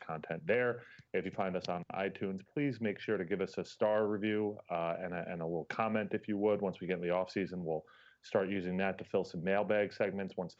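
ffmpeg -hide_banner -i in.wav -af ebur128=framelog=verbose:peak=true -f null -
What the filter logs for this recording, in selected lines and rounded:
Integrated loudness:
  I:         -36.0 LUFS
  Threshold: -46.1 LUFS
Loudness range:
  LRA:         1.2 LU
  Threshold: -56.2 LUFS
  LRA low:   -36.9 LUFS
  LRA high:  -35.7 LUFS
True peak:
  Peak:      -17.8 dBFS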